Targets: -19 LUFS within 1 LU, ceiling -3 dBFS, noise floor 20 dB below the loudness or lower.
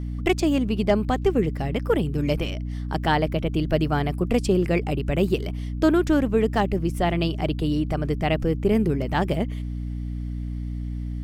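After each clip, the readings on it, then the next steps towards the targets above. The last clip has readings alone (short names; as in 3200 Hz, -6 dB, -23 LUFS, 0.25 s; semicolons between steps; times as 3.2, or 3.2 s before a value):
hum 60 Hz; harmonics up to 300 Hz; hum level -27 dBFS; loudness -24.0 LUFS; peak -8.0 dBFS; loudness target -19.0 LUFS
-> notches 60/120/180/240/300 Hz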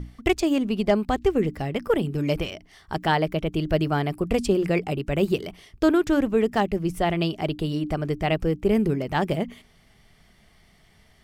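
hum none; loudness -24.5 LUFS; peak -9.0 dBFS; loudness target -19.0 LUFS
-> gain +5.5 dB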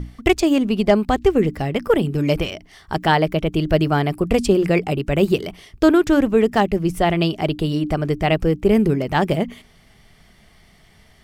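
loudness -19.0 LUFS; peak -3.5 dBFS; noise floor -52 dBFS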